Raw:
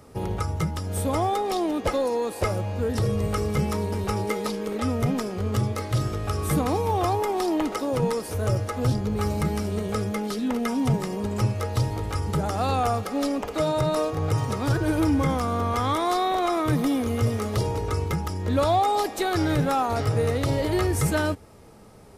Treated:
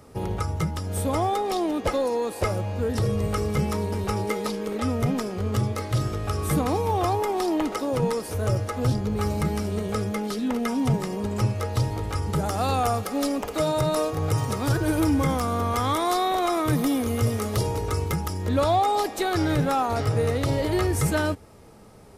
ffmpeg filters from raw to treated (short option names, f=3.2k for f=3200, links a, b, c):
-filter_complex "[0:a]asettb=1/sr,asplit=3[a][b][c];[a]atrim=end=12.364[d];[b]atrim=start=12.36:end=18.49,asetpts=PTS-STARTPTS,afade=t=in:d=0.004:c=qsin,afade=t=out:st=6.126:d=0.004:c=qsin,highshelf=f=7.8k:g=8.5[e];[c]atrim=start=18.486[f];[d][e]acrossfade=d=0.004:c1=hsin:c2=qsin[g];[g][f]acrossfade=d=0.004:c1=qsin:c2=hsin"